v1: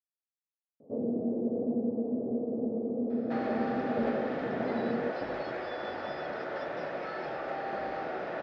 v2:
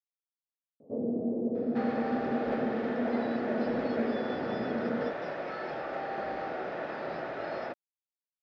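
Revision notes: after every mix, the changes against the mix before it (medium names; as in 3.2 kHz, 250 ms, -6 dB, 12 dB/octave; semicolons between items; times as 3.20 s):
second sound: entry -1.55 s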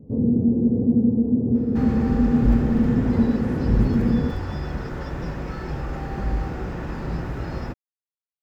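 first sound: entry -0.80 s; master: remove cabinet simulation 500–4200 Hz, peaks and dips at 630 Hz +10 dB, 1 kHz -6 dB, 2.8 kHz -3 dB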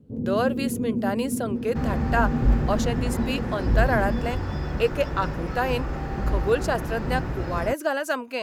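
speech: unmuted; first sound -8.5 dB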